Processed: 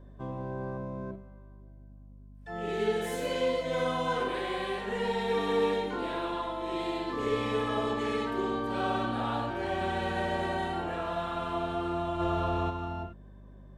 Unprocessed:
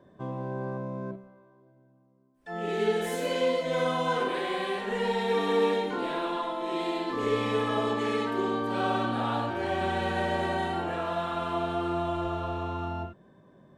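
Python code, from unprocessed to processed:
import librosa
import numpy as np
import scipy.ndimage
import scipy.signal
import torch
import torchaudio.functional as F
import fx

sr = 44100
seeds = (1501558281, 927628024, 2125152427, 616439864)

y = fx.add_hum(x, sr, base_hz=50, snr_db=18)
y = fx.env_flatten(y, sr, amount_pct=50, at=(12.19, 12.69), fade=0.02)
y = y * librosa.db_to_amplitude(-2.5)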